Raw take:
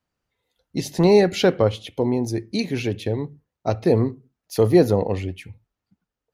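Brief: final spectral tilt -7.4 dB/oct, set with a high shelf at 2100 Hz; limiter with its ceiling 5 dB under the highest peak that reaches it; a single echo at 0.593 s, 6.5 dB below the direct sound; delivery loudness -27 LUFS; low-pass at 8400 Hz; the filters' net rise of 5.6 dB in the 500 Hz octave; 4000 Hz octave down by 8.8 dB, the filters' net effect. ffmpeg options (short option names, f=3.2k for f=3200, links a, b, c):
-af "lowpass=8.4k,equalizer=f=500:t=o:g=7.5,highshelf=f=2.1k:g=-7.5,equalizer=f=4k:t=o:g=-4,alimiter=limit=-5.5dB:level=0:latency=1,aecho=1:1:593:0.473,volume=-8.5dB"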